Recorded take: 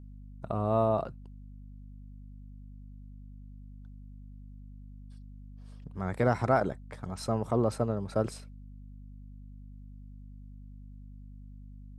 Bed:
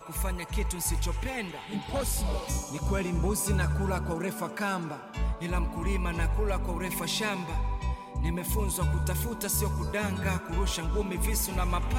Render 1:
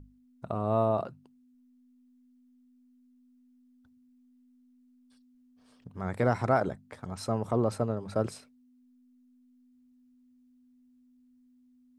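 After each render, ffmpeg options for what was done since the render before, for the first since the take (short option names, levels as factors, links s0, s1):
-af "bandreject=f=50:t=h:w=6,bandreject=f=100:t=h:w=6,bandreject=f=150:t=h:w=6,bandreject=f=200:t=h:w=6"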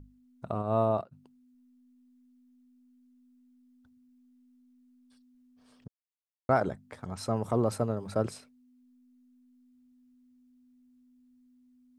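-filter_complex "[0:a]asplit=3[s0][s1][s2];[s0]afade=t=out:st=0.61:d=0.02[s3];[s1]agate=range=0.0224:threshold=0.0447:ratio=3:release=100:detection=peak,afade=t=in:st=0.61:d=0.02,afade=t=out:st=1.11:d=0.02[s4];[s2]afade=t=in:st=1.11:d=0.02[s5];[s3][s4][s5]amix=inputs=3:normalize=0,asettb=1/sr,asplit=3[s6][s7][s8];[s6]atrim=end=7.364[s9];[s7]atrim=start=7.36:end=8.15,asetpts=PTS-STARTPTS,afade=t=in:d=0.004:c=qsin,afade=t=out:st=0.786:d=0.004:c=qsin,highshelf=f=9000:g=9.5[s10];[s8]atrim=start=8.146[s11];[s9][s10]acrossfade=d=0.004:c1=hsin:c2=qsin[s12];[s12][s11]acrossfade=d=0.004:c1=qsin:c2=hsin,asplit=3[s13][s14][s15];[s13]atrim=end=5.88,asetpts=PTS-STARTPTS,afade=t=out:st=5.876:d=0.004:c=hsin[s16];[s14]atrim=start=5.88:end=6.49,asetpts=PTS-STARTPTS,volume=0[s17];[s15]atrim=start=6.49,asetpts=PTS-STARTPTS,afade=t=in:d=0.004:c=hsin[s18];[s16][s17][s18]concat=n=3:v=0:a=1"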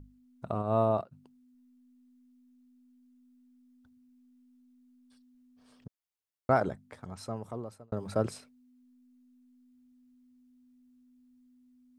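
-filter_complex "[0:a]asplit=2[s0][s1];[s0]atrim=end=7.92,asetpts=PTS-STARTPTS,afade=t=out:st=6.53:d=1.39[s2];[s1]atrim=start=7.92,asetpts=PTS-STARTPTS,afade=t=in:d=0.004:c=hsin[s3];[s2][s3]concat=n=2:v=0:a=1"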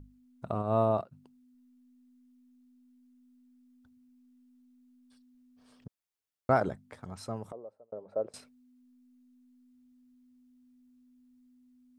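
-filter_complex "[0:a]asettb=1/sr,asplit=3[s0][s1][s2];[s0]atrim=end=7.524[s3];[s1]atrim=start=7.52:end=8.34,asetpts=PTS-STARTPTS,afade=t=in:d=0.004:c=qsin,afade=t=out:st=0.816:d=0.004:c=qsin,bandpass=f=550:t=q:w=3.2[s4];[s2]atrim=start=8.336[s5];[s3][s4]acrossfade=d=0.004:c1=hsin:c2=qsin[s6];[s6][s5]acrossfade=d=0.004:c1=qsin:c2=hsin"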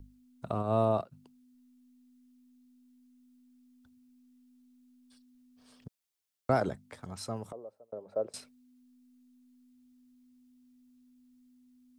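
-filter_complex "[0:a]acrossover=split=330|690|2600[s0][s1][s2][s3];[s2]alimiter=level_in=1.41:limit=0.0631:level=0:latency=1,volume=0.708[s4];[s3]acontrast=35[s5];[s0][s1][s4][s5]amix=inputs=4:normalize=0"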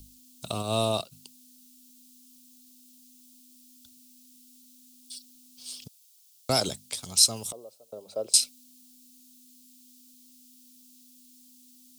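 -af "aexciter=amount=12.5:drive=6.7:freq=2700"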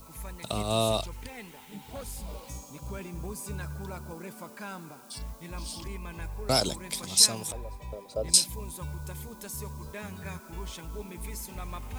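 -filter_complex "[1:a]volume=0.316[s0];[0:a][s0]amix=inputs=2:normalize=0"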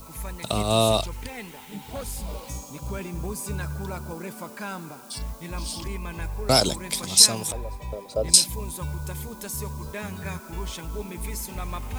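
-af "volume=2,alimiter=limit=0.891:level=0:latency=1"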